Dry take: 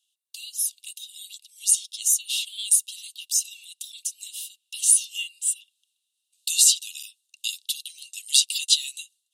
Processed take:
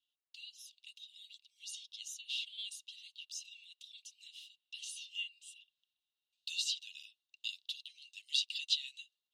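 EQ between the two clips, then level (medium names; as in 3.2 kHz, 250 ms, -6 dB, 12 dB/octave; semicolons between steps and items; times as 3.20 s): distance through air 240 m; -5.0 dB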